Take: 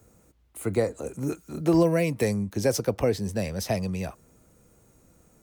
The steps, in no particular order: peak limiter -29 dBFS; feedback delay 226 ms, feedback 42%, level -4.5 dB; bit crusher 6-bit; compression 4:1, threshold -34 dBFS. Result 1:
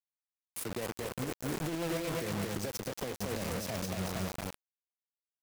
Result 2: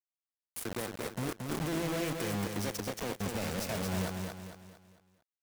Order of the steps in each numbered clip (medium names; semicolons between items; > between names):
feedback delay > compression > bit crusher > peak limiter; compression > peak limiter > bit crusher > feedback delay